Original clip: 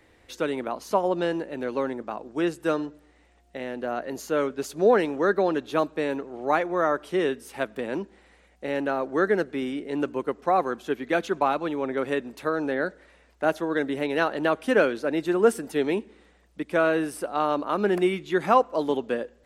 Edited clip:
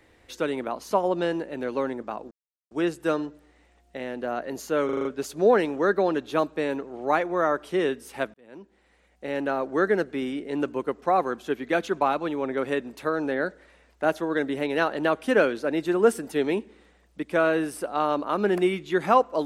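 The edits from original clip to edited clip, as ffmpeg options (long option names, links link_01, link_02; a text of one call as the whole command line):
ffmpeg -i in.wav -filter_complex "[0:a]asplit=8[link_01][link_02][link_03][link_04][link_05][link_06][link_07][link_08];[link_01]atrim=end=2.31,asetpts=PTS-STARTPTS,afade=type=out:start_time=2.306:duration=0.004:curve=hsin,apad=pad_dur=0.4[link_09];[link_02]atrim=start=2.31:end=4.492,asetpts=PTS-STARTPTS,afade=type=in:duration=0.004:curve=hsin[link_10];[link_03]atrim=start=4.448:end=4.492[link_11];[link_04]atrim=start=4.448:end=4.492[link_12];[link_05]atrim=start=4.448:end=4.492[link_13];[link_06]atrim=start=4.448:end=4.492[link_14];[link_07]atrim=start=4.448:end=7.74,asetpts=PTS-STARTPTS,afade=type=out:start_time=3.288:duration=0.004:curve=hsin[link_15];[link_08]atrim=start=7.74,asetpts=PTS-STARTPTS,afade=type=in:duration=1.17[link_16];[link_09][link_10]concat=n=2:v=0:a=1[link_17];[link_17][link_11]acrossfade=duration=0.004:curve1=hsin:curve2=hsin[link_18];[link_18][link_12]acrossfade=duration=0.004:curve1=hsin:curve2=hsin[link_19];[link_19][link_13]acrossfade=duration=0.004:curve1=hsin:curve2=hsin[link_20];[link_20][link_14]acrossfade=duration=0.004:curve1=hsin:curve2=hsin[link_21];[link_15][link_16]concat=n=2:v=0:a=1[link_22];[link_21][link_22]acrossfade=duration=0.004:curve1=hsin:curve2=hsin" out.wav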